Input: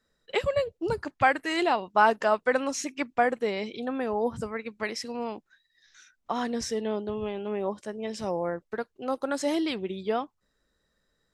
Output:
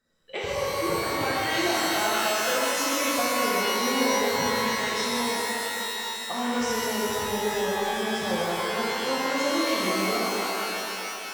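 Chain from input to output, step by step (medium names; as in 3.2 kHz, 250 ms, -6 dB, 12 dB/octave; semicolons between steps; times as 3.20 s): compression, threshold -28 dBFS, peak gain reduction 12.5 dB; pitch-shifted reverb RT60 3.2 s, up +12 st, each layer -2 dB, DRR -7.5 dB; trim -3.5 dB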